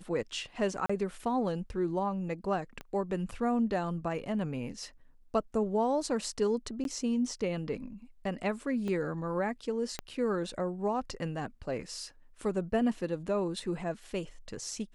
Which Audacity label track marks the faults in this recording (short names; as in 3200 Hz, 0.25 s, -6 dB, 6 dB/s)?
0.860000	0.900000	gap 35 ms
2.810000	2.810000	pop -27 dBFS
6.840000	6.850000	gap 12 ms
8.880000	8.880000	gap 2.1 ms
9.990000	9.990000	pop -19 dBFS